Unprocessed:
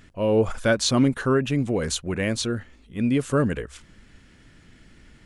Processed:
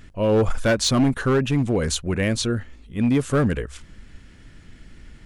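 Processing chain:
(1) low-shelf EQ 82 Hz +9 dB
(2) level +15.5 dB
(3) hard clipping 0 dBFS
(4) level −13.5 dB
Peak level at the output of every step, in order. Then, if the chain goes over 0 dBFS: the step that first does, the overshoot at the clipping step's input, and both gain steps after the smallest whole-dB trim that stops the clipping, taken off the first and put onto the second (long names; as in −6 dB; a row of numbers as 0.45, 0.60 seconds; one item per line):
−8.0, +7.5, 0.0, −13.5 dBFS
step 2, 7.5 dB
step 2 +7.5 dB, step 4 −5.5 dB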